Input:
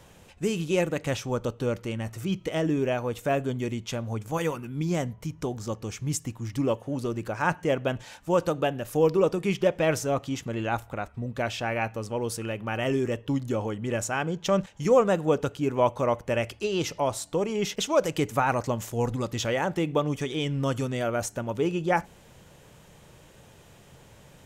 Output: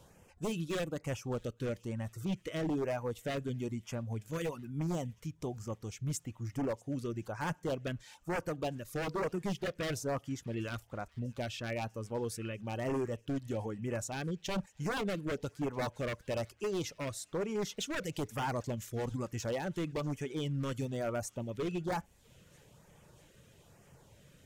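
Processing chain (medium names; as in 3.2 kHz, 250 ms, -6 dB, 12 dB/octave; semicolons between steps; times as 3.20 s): reverb removal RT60 0.55 s; harmonic-percussive split percussive -4 dB; wavefolder -23.5 dBFS; LFO notch sine 1.1 Hz 770–4000 Hz; on a send: feedback echo behind a high-pass 644 ms, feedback 69%, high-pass 2 kHz, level -23.5 dB; on the sum: trim -4.5 dB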